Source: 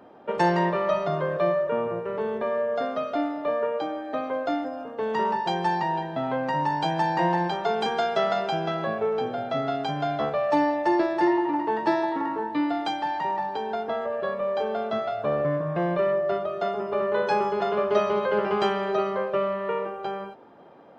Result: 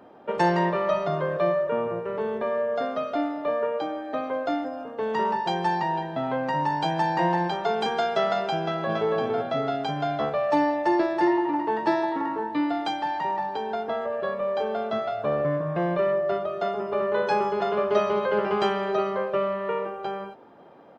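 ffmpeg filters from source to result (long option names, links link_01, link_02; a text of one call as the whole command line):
ffmpeg -i in.wav -filter_complex "[0:a]asplit=2[link_01][link_02];[link_02]afade=type=in:start_time=8.61:duration=0.01,afade=type=out:start_time=9.13:duration=0.01,aecho=0:1:280|560|840|1120:0.749894|0.224968|0.0674905|0.0202471[link_03];[link_01][link_03]amix=inputs=2:normalize=0" out.wav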